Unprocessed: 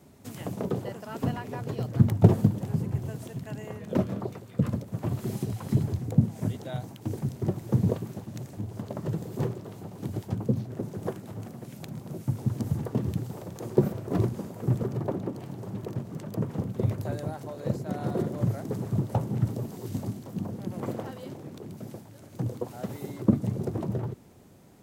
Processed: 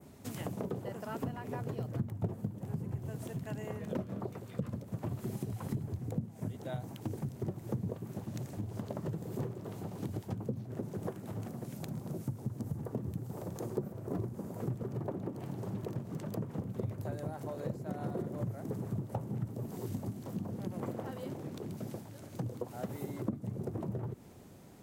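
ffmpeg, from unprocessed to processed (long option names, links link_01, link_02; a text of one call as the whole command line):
ffmpeg -i in.wav -filter_complex "[0:a]asettb=1/sr,asplit=3[link_01][link_02][link_03];[link_01]atrim=end=11.504[link_04];[link_02]atrim=start=11.5:end=14.61,asetpts=PTS-STARTPTS,afade=type=in:duration=0.004:curve=qsin,afade=type=out:start_time=3.106:duration=0.004:curve=qsin,equalizer=frequency=2800:width_type=o:width=1.7:gain=-4.5[link_05];[link_03]atrim=start=14.606[link_06];[link_04][link_05]acrossfade=duration=0.004:curve1=hsin:curve2=qsin[link_07];[link_07][link_06]acrossfade=duration=0.004:curve1=qsin:curve2=hsin,adynamicequalizer=threshold=0.00141:dfrequency=4300:dqfactor=0.79:tfrequency=4300:tqfactor=0.79:attack=5:release=100:ratio=0.375:range=3:mode=cutabove:tftype=bell,acompressor=threshold=-35dB:ratio=4" out.wav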